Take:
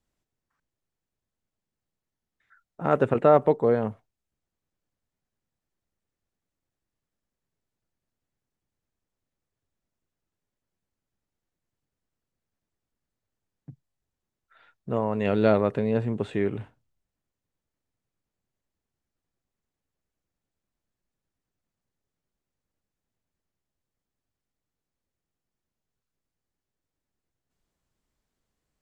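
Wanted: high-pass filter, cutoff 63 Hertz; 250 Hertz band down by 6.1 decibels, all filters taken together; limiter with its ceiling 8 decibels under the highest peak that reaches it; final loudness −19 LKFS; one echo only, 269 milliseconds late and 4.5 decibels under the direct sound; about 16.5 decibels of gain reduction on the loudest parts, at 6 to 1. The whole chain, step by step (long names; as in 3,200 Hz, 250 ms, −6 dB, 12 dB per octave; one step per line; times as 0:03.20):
high-pass filter 63 Hz
parametric band 250 Hz −8 dB
downward compressor 6 to 1, threshold −32 dBFS
brickwall limiter −25.5 dBFS
single-tap delay 269 ms −4.5 dB
level +20 dB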